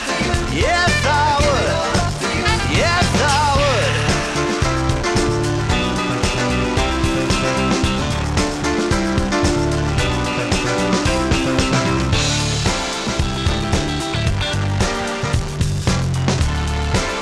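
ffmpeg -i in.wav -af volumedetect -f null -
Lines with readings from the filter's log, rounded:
mean_volume: -17.5 dB
max_volume: -2.6 dB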